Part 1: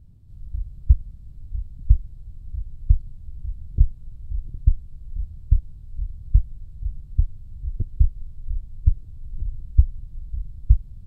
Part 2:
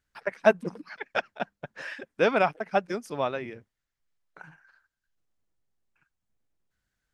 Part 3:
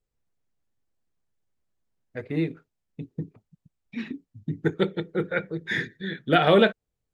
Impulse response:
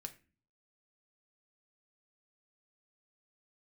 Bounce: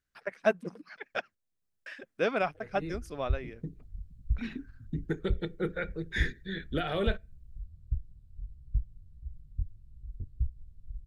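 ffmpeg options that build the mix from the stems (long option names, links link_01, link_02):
-filter_complex "[0:a]flanger=delay=15.5:depth=7.6:speed=1.6,adelay=2400,volume=-12dB,asplit=2[link_01][link_02];[link_02]volume=-10.5dB[link_03];[1:a]bandreject=frequency=890:width=15,volume=-5.5dB,asplit=3[link_04][link_05][link_06];[link_04]atrim=end=1.35,asetpts=PTS-STARTPTS,afade=type=out:start_time=1.346:duration=0.004:curve=hsin[link_07];[link_05]atrim=start=1.35:end=1.86,asetpts=PTS-STARTPTS,volume=0[link_08];[link_06]atrim=start=1.86,asetpts=PTS-STARTPTS,afade=type=in:duration=0.004:curve=hsin[link_09];[link_07][link_08][link_09]concat=n=3:v=0:a=1,asplit=2[link_10][link_11];[2:a]highshelf=frequency=6400:gain=7,alimiter=limit=-15.5dB:level=0:latency=1:release=165,adelay=450,volume=-6dB,asplit=2[link_12][link_13];[link_13]volume=-13.5dB[link_14];[link_11]apad=whole_len=334675[link_15];[link_12][link_15]sidechaincompress=threshold=-38dB:ratio=4:attack=6.5:release=600[link_16];[3:a]atrim=start_sample=2205[link_17];[link_03][link_14]amix=inputs=2:normalize=0[link_18];[link_18][link_17]afir=irnorm=-1:irlink=0[link_19];[link_01][link_10][link_16][link_19]amix=inputs=4:normalize=0,equalizer=frequency=920:width=3.3:gain=-3.5"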